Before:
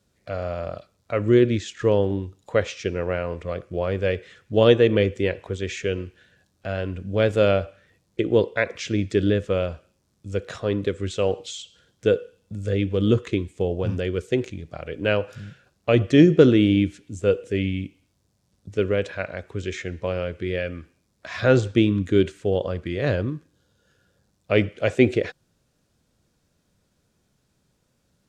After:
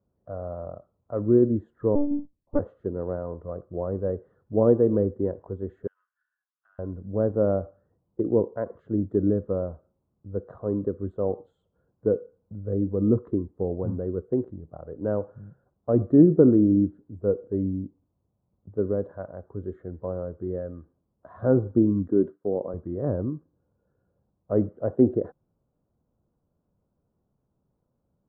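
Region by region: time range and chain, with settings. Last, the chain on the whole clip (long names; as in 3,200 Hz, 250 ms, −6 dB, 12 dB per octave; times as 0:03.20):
0:01.95–0:02.60: parametric band 150 Hz +14.5 dB 1.4 octaves + one-pitch LPC vocoder at 8 kHz 290 Hz + expander for the loud parts 2.5 to 1, over −28 dBFS
0:05.87–0:06.79: Butterworth high-pass 1,300 Hz + downward compressor 5 to 1, threshold −40 dBFS
0:22.08–0:22.74: high-pass filter 190 Hz + downward expander −43 dBFS
whole clip: inverse Chebyshev low-pass filter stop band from 2,200 Hz, stop band 40 dB; dynamic equaliser 250 Hz, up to +6 dB, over −33 dBFS, Q 1.3; level −5.5 dB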